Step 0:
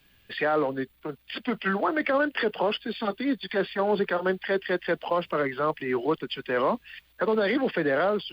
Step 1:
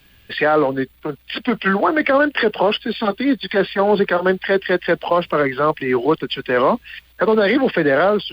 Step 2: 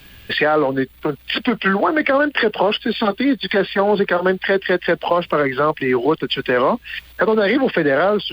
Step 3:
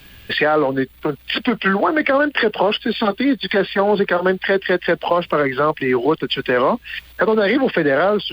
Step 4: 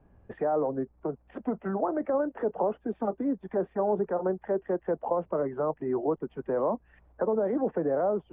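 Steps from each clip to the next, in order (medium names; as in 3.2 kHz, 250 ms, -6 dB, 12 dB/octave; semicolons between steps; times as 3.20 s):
peaking EQ 63 Hz +4.5 dB 1.4 oct; trim +9 dB
compression 2:1, threshold -29 dBFS, peak gain reduction 10 dB; trim +8.5 dB
no audible change
four-pole ladder low-pass 1 kHz, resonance 30%; trim -5.5 dB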